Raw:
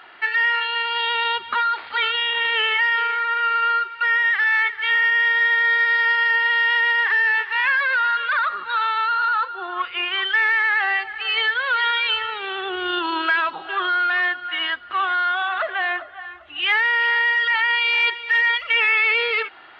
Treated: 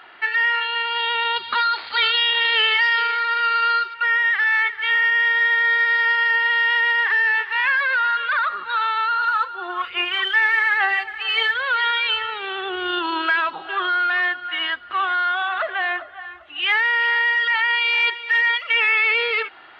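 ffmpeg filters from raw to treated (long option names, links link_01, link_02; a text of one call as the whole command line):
ffmpeg -i in.wav -filter_complex "[0:a]asettb=1/sr,asplit=3[link_01][link_02][link_03];[link_01]atrim=end=1.364[link_04];[link_02]atrim=start=1.36:end=3.94,asetpts=PTS-STARTPTS,afade=type=in:duration=0.004:curve=qsin,afade=type=out:start_time=2.576:duration=0.004:curve=qsin,equalizer=frequency=4500:width=2.1:gain=14.5[link_05];[link_03]atrim=start=3.936[link_06];[link_04][link_05]acrossfade=duration=0.004:curve1=hsin:curve2=qsin[link_07];[link_07][link_06]acrossfade=duration=0.004:curve1=qsin:curve2=hsin,asplit=3[link_08][link_09][link_10];[link_08]afade=type=out:start_time=9.21:duration=0.02[link_11];[link_09]aphaser=in_gain=1:out_gain=1:delay=3.5:decay=0.34:speed=1.2:type=sinusoidal,afade=type=in:start_time=9.21:duration=0.02,afade=type=out:start_time=11.62:duration=0.02[link_12];[link_10]afade=type=in:start_time=11.62:duration=0.02[link_13];[link_11][link_12][link_13]amix=inputs=3:normalize=0,asettb=1/sr,asplit=3[link_14][link_15][link_16];[link_14]atrim=end=16.434[link_17];[link_15]atrim=start=16.43:end=18.86,asetpts=PTS-STARTPTS,afade=type=in:duration=0.004:curve=qsin,afade=type=out:start_time=2.426:duration=0.004:curve=qsin,highpass=frequency=200:poles=1[link_18];[link_16]atrim=start=18.856[link_19];[link_17][link_18]acrossfade=duration=0.004:curve1=hsin:curve2=qsin[link_20];[link_20][link_19]acrossfade=duration=0.004:curve1=qsin:curve2=hsin" out.wav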